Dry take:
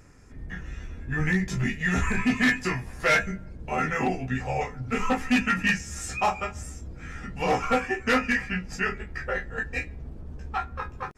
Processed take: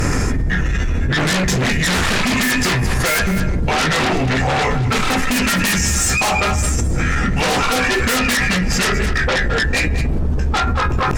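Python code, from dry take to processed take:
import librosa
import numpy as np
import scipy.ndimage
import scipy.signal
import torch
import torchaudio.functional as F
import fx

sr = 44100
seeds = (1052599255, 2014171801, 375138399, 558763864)

p1 = fx.fold_sine(x, sr, drive_db=14, ceiling_db=-15.0)
p2 = x + (p1 * librosa.db_to_amplitude(-4.0))
p3 = p2 + 10.0 ** (-14.5 / 20.0) * np.pad(p2, (int(212 * sr / 1000.0), 0))[:len(p2)]
y = fx.env_flatten(p3, sr, amount_pct=100)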